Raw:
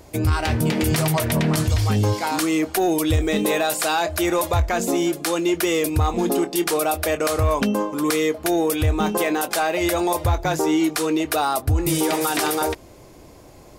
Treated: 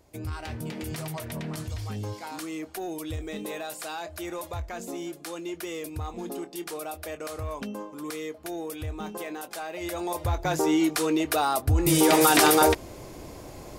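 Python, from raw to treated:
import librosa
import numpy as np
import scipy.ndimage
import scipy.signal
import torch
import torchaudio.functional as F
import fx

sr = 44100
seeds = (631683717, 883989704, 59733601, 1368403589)

y = fx.gain(x, sr, db=fx.line((9.68, -14.5), (10.6, -3.5), (11.68, -3.5), (12.2, 3.5)))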